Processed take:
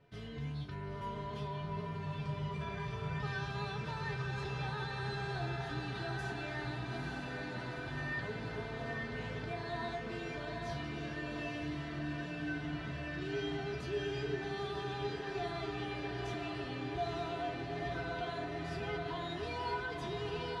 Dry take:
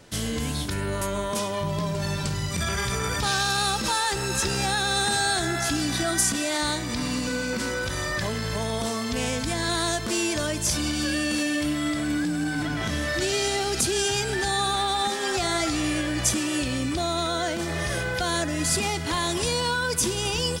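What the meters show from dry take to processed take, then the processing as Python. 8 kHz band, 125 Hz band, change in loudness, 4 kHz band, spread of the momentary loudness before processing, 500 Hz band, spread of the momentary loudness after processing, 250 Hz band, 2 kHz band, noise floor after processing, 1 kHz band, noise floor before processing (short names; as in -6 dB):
-35.0 dB, -9.0 dB, -14.5 dB, -20.0 dB, 5 LU, -11.0 dB, 3 LU, -14.5 dB, -13.0 dB, -43 dBFS, -12.5 dB, -29 dBFS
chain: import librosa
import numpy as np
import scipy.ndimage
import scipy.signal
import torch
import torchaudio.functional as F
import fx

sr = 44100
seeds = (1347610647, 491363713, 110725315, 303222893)

y = fx.air_absorb(x, sr, metres=340.0)
y = fx.comb_fb(y, sr, f0_hz=140.0, decay_s=0.23, harmonics='odd', damping=0.0, mix_pct=90)
y = fx.echo_diffused(y, sr, ms=904, feedback_pct=68, wet_db=-3.0)
y = y * 10.0 ** (-1.5 / 20.0)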